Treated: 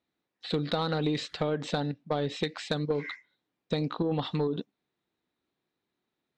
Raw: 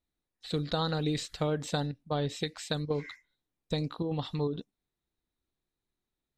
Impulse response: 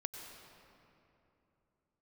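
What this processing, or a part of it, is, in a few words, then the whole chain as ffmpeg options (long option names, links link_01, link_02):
AM radio: -af "highpass=170,lowpass=3700,acompressor=threshold=-31dB:ratio=6,asoftclip=type=tanh:threshold=-24.5dB,volume=8dB"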